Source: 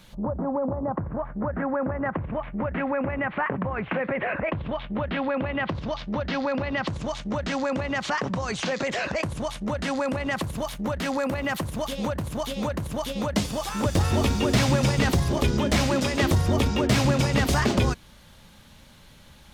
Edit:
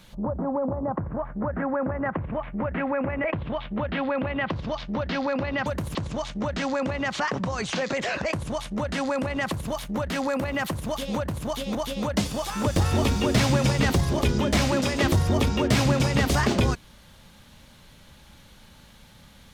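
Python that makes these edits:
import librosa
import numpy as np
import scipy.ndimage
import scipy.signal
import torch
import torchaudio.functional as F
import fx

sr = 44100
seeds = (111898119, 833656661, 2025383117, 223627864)

y = fx.edit(x, sr, fx.cut(start_s=3.24, length_s=1.19),
    fx.move(start_s=12.65, length_s=0.29, to_s=6.85), tone=tone)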